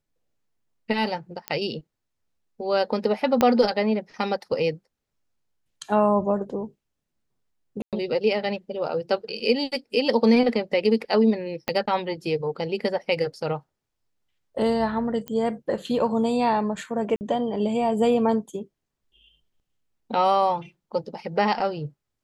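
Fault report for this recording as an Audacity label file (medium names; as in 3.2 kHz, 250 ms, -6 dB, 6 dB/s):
1.480000	1.480000	pop -13 dBFS
3.410000	3.410000	pop -6 dBFS
7.820000	7.930000	dropout 107 ms
11.680000	11.680000	pop -11 dBFS
15.280000	15.280000	pop -17 dBFS
17.160000	17.210000	dropout 49 ms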